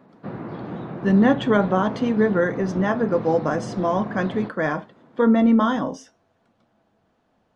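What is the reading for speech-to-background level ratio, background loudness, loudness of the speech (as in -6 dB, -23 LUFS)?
12.0 dB, -33.0 LUFS, -21.0 LUFS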